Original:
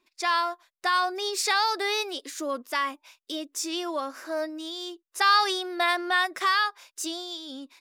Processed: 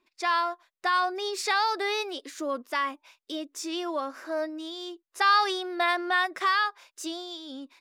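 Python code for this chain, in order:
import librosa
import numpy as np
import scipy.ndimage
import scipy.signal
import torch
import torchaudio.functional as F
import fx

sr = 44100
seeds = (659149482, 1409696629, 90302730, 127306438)

y = fx.high_shelf(x, sr, hz=4600.0, db=-9.0)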